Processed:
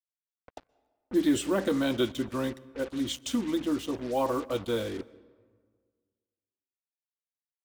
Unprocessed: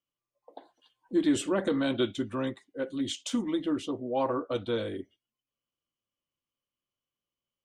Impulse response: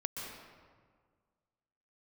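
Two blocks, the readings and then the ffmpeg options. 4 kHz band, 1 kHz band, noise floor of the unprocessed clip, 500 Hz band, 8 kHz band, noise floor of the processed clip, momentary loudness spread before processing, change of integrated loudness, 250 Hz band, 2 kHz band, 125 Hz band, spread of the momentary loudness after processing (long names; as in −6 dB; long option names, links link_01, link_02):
+1.0 dB, +1.0 dB, below −85 dBFS, +0.5 dB, +1.5 dB, below −85 dBFS, 9 LU, +1.0 dB, +0.5 dB, +1.0 dB, +1.0 dB, 9 LU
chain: -filter_complex "[0:a]aeval=exprs='val(0)+0.00178*(sin(2*PI*60*n/s)+sin(2*PI*2*60*n/s)/2+sin(2*PI*3*60*n/s)/3+sin(2*PI*4*60*n/s)/4+sin(2*PI*5*60*n/s)/5)':channel_layout=same,acrusher=bits=6:mix=0:aa=0.5,asplit=2[link_01][link_02];[1:a]atrim=start_sample=2205[link_03];[link_02][link_03]afir=irnorm=-1:irlink=0,volume=-20dB[link_04];[link_01][link_04]amix=inputs=2:normalize=0"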